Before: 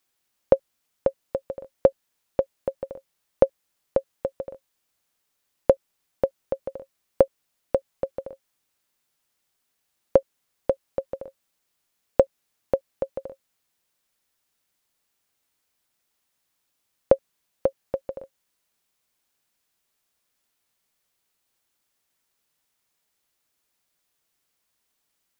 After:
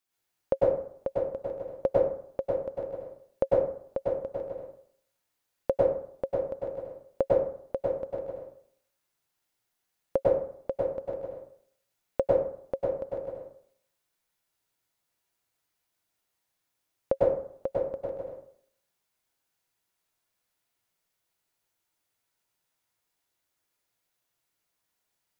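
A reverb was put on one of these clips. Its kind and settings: plate-style reverb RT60 0.6 s, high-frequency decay 0.55×, pre-delay 90 ms, DRR -6 dB; trim -10 dB

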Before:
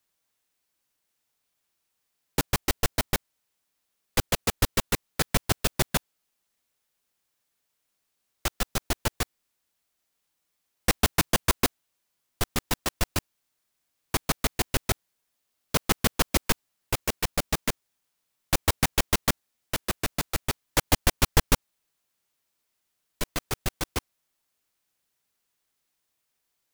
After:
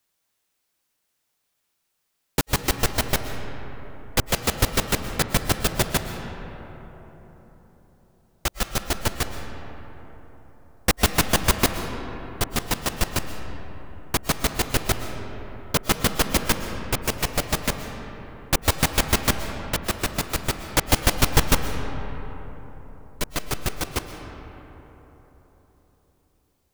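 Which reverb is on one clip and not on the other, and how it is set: algorithmic reverb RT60 4.2 s, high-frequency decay 0.4×, pre-delay 85 ms, DRR 7 dB; trim +3 dB

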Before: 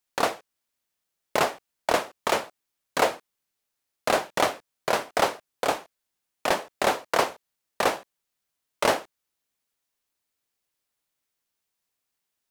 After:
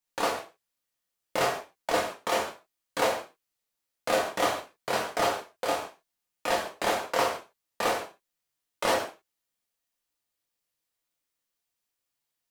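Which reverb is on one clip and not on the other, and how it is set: gated-style reverb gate 180 ms falling, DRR -2.5 dB; trim -7 dB

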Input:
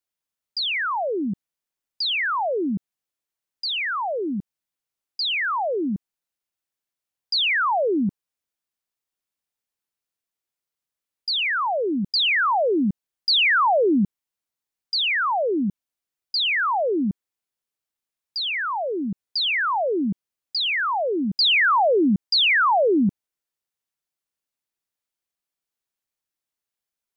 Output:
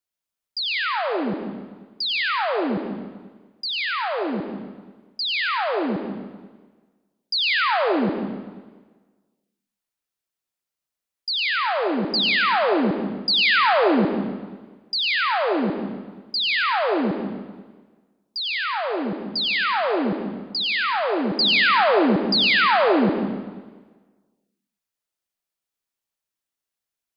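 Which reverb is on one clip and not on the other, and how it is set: algorithmic reverb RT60 1.4 s, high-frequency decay 0.95×, pre-delay 55 ms, DRR 3 dB; trim -1 dB

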